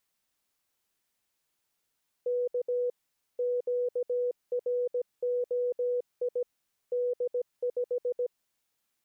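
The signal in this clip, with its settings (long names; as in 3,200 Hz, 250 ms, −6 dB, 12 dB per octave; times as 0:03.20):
Morse code "K QROI D5" 17 words per minute 491 Hz −26 dBFS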